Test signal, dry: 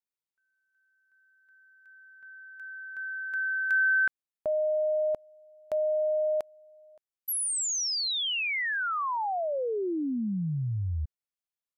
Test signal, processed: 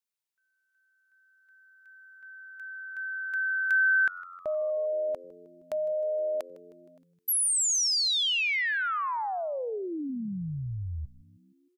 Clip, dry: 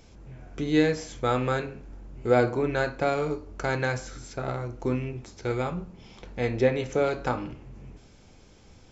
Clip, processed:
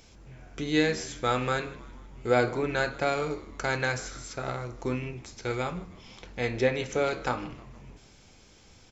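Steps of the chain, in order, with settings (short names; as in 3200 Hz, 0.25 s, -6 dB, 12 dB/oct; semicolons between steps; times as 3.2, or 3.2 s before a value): tilt shelf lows -4 dB, about 1200 Hz; frequency-shifting echo 0.156 s, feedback 59%, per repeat -89 Hz, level -20 dB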